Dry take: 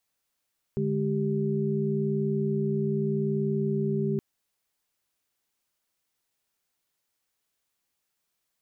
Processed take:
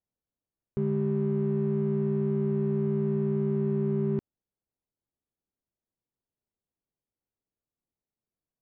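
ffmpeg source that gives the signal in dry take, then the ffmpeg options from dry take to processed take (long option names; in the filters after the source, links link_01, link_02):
-f lavfi -i "aevalsrc='0.0376*(sin(2*PI*146.83*t)+sin(2*PI*207.65*t)+sin(2*PI*392*t))':duration=3.42:sample_rate=44100"
-af "adynamicsmooth=sensitivity=4:basefreq=530"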